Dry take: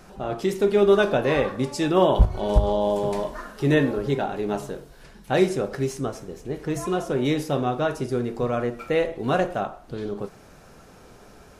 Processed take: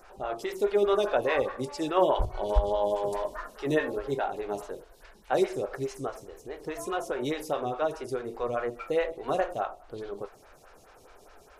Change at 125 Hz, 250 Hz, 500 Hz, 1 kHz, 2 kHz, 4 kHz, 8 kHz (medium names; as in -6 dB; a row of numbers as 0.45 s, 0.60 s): -13.0 dB, -10.0 dB, -5.0 dB, -3.0 dB, -6.0 dB, -6.5 dB, -6.5 dB